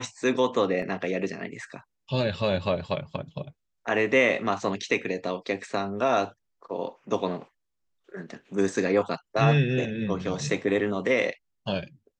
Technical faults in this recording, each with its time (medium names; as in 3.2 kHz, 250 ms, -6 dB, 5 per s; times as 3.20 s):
0.82 s: dropout 4.1 ms